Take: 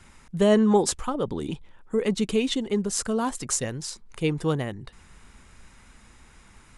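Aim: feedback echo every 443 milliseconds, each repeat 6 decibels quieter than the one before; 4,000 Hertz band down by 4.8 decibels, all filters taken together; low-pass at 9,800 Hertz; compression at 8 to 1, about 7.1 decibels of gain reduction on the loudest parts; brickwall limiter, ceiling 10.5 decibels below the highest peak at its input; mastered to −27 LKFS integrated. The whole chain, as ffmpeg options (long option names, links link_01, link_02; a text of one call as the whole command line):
ffmpeg -i in.wav -af "lowpass=9800,equalizer=frequency=4000:width_type=o:gain=-6.5,acompressor=threshold=-22dB:ratio=8,alimiter=limit=-22dB:level=0:latency=1,aecho=1:1:443|886|1329|1772|2215|2658:0.501|0.251|0.125|0.0626|0.0313|0.0157,volume=4dB" out.wav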